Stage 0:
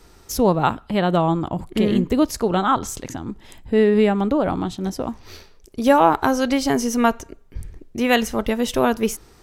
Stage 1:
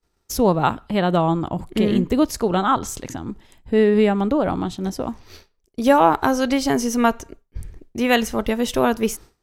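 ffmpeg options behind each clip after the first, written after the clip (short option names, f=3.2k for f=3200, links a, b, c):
-af "agate=range=-33dB:threshold=-35dB:ratio=3:detection=peak"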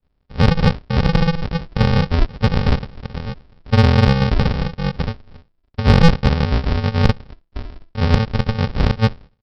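-af "aresample=11025,acrusher=samples=33:mix=1:aa=0.000001,aresample=44100,acontrast=23,volume=-1dB"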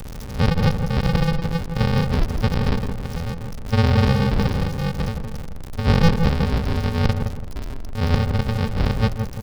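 -filter_complex "[0:a]aeval=exprs='val(0)+0.5*0.0944*sgn(val(0))':c=same,asplit=2[a][b];[b]adelay=166,lowpass=f=1.2k:p=1,volume=-5.5dB,asplit=2[c][d];[d]adelay=166,lowpass=f=1.2k:p=1,volume=0.34,asplit=2[e][f];[f]adelay=166,lowpass=f=1.2k:p=1,volume=0.34,asplit=2[g][h];[h]adelay=166,lowpass=f=1.2k:p=1,volume=0.34[i];[c][e][g][i]amix=inputs=4:normalize=0[j];[a][j]amix=inputs=2:normalize=0,volume=-6dB"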